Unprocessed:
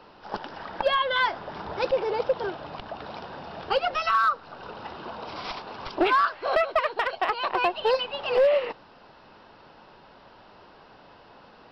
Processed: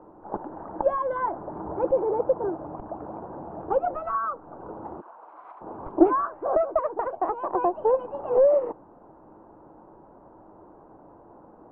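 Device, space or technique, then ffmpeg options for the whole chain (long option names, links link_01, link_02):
under water: -filter_complex "[0:a]lowpass=frequency=1000:width=0.5412,lowpass=frequency=1000:width=1.3066,equalizer=frequency=320:width_type=o:width=0.27:gain=10,asplit=3[link_01][link_02][link_03];[link_01]afade=type=out:start_time=5:duration=0.02[link_04];[link_02]highpass=1300,afade=type=in:start_time=5:duration=0.02,afade=type=out:start_time=5.6:duration=0.02[link_05];[link_03]afade=type=in:start_time=5.6:duration=0.02[link_06];[link_04][link_05][link_06]amix=inputs=3:normalize=0,volume=1.5dB"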